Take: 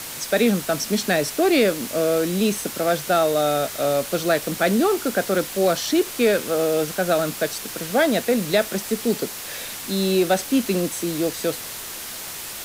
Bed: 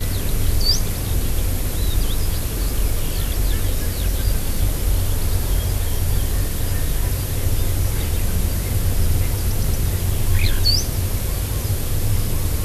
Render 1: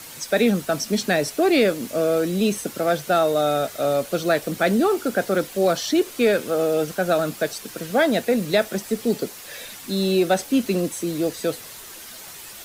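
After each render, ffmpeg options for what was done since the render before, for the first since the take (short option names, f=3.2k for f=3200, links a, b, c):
-af "afftdn=nr=8:nf=-34"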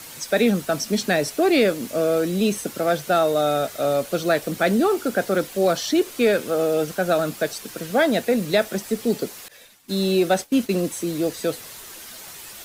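-filter_complex "[0:a]asettb=1/sr,asplit=3[a][b][c];[a]atrim=end=9.484[d];[b]atrim=start=9.48:end=10.74,asetpts=PTS-STARTPTS,afade=t=in:d=0.004:c=qsin,afade=t=out:st=1.256:d=0.004:c=qsin,agate=range=-33dB:threshold=-29dB:ratio=3:release=100:detection=peak[e];[c]atrim=start=10.736[f];[d][e]acrossfade=d=0.004:c1=hsin:c2=qsin[g];[g][f]acrossfade=d=0.004:c1=qsin:c2=hsin"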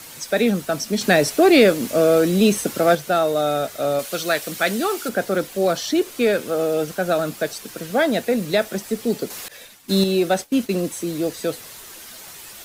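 -filter_complex "[0:a]asettb=1/sr,asplit=3[a][b][c];[a]atrim=end=3.994[d];[b]atrim=start=3.99:end=5.09,asetpts=PTS-STARTPTS,afade=t=in:d=0.004:c=qsin,afade=t=out:st=1.096:d=0.004:c=qsin,tiltshelf=f=970:g=-6[e];[c]atrim=start=5.086[f];[d][e]acrossfade=d=0.004:c1=hsin:c2=qsin[g];[g][f]acrossfade=d=0.004:c1=qsin:c2=hsin,asettb=1/sr,asplit=3[h][i][j];[h]atrim=end=9.304[k];[i]atrim=start=9.3:end=10.04,asetpts=PTS-STARTPTS,afade=t=in:d=0.004:c=qsin,afade=t=out:st=0.736:d=0.004:c=qsin,acontrast=53[l];[j]atrim=start=10.036[m];[k][l]acrossfade=d=0.004:c1=hsin:c2=qsin[n];[n][m]acrossfade=d=0.004:c1=qsin:c2=hsin,asplit=3[o][p][q];[o]atrim=end=1.012[r];[p]atrim=start=1.008:end=2.952,asetpts=PTS-STARTPTS,volume=5dB[s];[q]atrim=start=2.948[t];[r][s]acrossfade=d=0.004:c1=hsin:c2=hsin[u];[u][t]acrossfade=d=0.004:c1=hsin:c2=hsin"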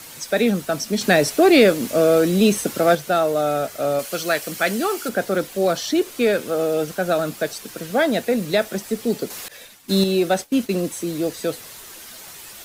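-filter_complex "[0:a]asettb=1/sr,asplit=3[a][b][c];[a]atrim=end=3.204[d];[b]atrim=start=3.2:end=5.06,asetpts=PTS-STARTPTS,afade=t=in:d=0.004:c=qsin,afade=t=out:st=1.856:d=0.004:c=qsin,bandreject=f=3.7k:w=12[e];[c]atrim=start=5.056[f];[d][e]acrossfade=d=0.004:c1=hsin:c2=qsin[g];[g][f]acrossfade=d=0.004:c1=qsin:c2=hsin"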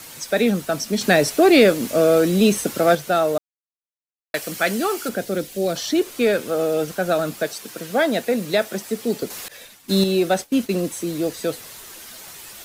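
-filter_complex "[0:a]asettb=1/sr,asplit=3[a][b][c];[a]atrim=end=5.164[d];[b]atrim=start=5.16:end=5.76,asetpts=PTS-STARTPTS,afade=t=in:d=0.004:c=qsin,afade=t=out:st=0.596:d=0.004:c=qsin,equalizer=f=1.1k:t=o:w=1.6:g=-9.5[e];[c]atrim=start=5.756[f];[d][e]acrossfade=d=0.004:c1=hsin:c2=qsin[g];[g][f]acrossfade=d=0.004:c1=qsin:c2=hsin,asettb=1/sr,asplit=3[h][i][j];[h]atrim=end=7.444[k];[i]atrim=start=7.44:end=9.23,asetpts=PTS-STARTPTS,afade=t=in:d=0.004:c=qsin,afade=t=out:st=1.786:d=0.004:c=qsin,highpass=f=150:p=1[l];[j]atrim=start=9.226[m];[k][l]acrossfade=d=0.004:c1=hsin:c2=qsin[n];[n][m]acrossfade=d=0.004:c1=qsin:c2=hsin,asplit=3[o][p][q];[o]atrim=end=3.38,asetpts=PTS-STARTPTS,afade=t=out:st=3.376:d=0.004:c=hsin[r];[p]atrim=start=3.38:end=4.34,asetpts=PTS-STARTPTS,volume=0[s];[q]atrim=start=4.34,asetpts=PTS-STARTPTS,afade=t=in:d=0.004:c=hsin[t];[r][s][t]concat=n=3:v=0:a=1"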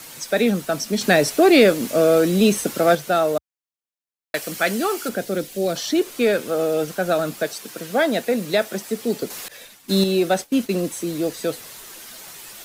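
-af "equalizer=f=73:w=2.8:g=-12"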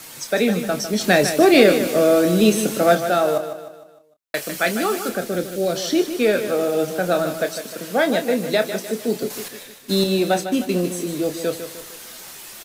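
-filter_complex "[0:a]asplit=2[a][b];[b]adelay=28,volume=-9dB[c];[a][c]amix=inputs=2:normalize=0,asplit=2[d][e];[e]aecho=0:1:152|304|456|608|760:0.316|0.145|0.0669|0.0308|0.0142[f];[d][f]amix=inputs=2:normalize=0"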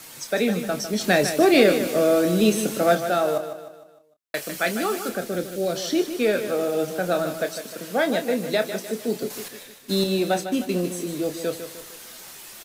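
-af "volume=-3.5dB"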